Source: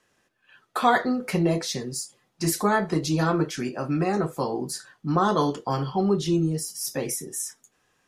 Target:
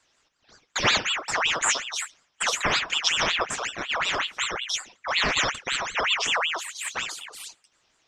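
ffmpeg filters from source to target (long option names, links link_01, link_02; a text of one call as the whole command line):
ffmpeg -i in.wav -af "lowpass=frequency=4400:width_type=q:width=9.8,aeval=exprs='val(0)*sin(2*PI*2000*n/s+2000*0.6/5.4*sin(2*PI*5.4*n/s))':channel_layout=same" out.wav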